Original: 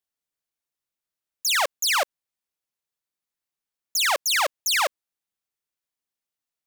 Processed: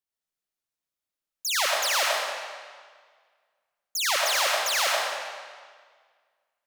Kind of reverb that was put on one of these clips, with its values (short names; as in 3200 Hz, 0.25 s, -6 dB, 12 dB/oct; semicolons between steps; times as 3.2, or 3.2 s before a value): digital reverb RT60 1.7 s, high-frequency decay 0.9×, pre-delay 45 ms, DRR -3 dB; gain -5.5 dB